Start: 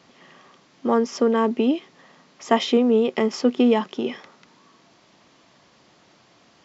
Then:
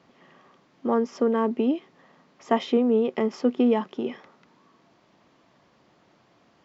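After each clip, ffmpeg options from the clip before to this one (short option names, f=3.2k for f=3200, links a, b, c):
-af "highshelf=f=2.9k:g=-11.5,volume=-3dB"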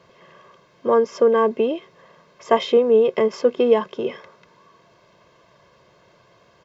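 -af "aecho=1:1:1.9:0.76,volume=4.5dB"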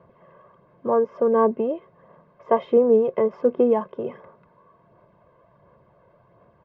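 -af "lowpass=1k,equalizer=f=390:w=1.8:g=-4,aphaser=in_gain=1:out_gain=1:delay=2:decay=0.3:speed=1.4:type=sinusoidal"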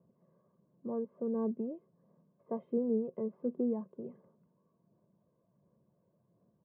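-af "bandpass=f=210:t=q:w=1.8:csg=0,volume=-7.5dB"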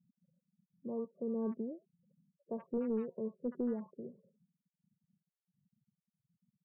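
-filter_complex "[0:a]asoftclip=type=hard:threshold=-26.5dB,afftfilt=real='re*gte(hypot(re,im),0.00224)':imag='im*gte(hypot(re,im),0.00224)':win_size=1024:overlap=0.75,acrossover=split=1000[a][b];[b]adelay=70[c];[a][c]amix=inputs=2:normalize=0,volume=-2.5dB"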